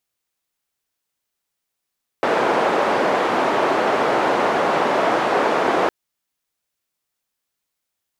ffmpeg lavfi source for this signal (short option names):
-f lavfi -i "anoisesrc=c=white:d=3.66:r=44100:seed=1,highpass=f=360,lowpass=f=830,volume=2.4dB"